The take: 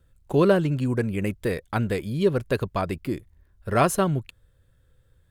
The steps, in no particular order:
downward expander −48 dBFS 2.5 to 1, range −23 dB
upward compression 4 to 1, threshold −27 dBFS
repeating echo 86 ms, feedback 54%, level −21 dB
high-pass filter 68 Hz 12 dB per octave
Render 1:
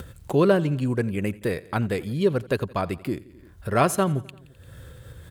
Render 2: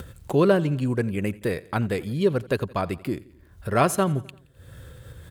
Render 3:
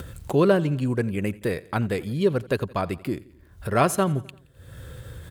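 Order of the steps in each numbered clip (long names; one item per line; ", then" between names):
repeating echo, then upward compression, then high-pass filter, then downward expander
upward compression, then high-pass filter, then downward expander, then repeating echo
high-pass filter, then upward compression, then downward expander, then repeating echo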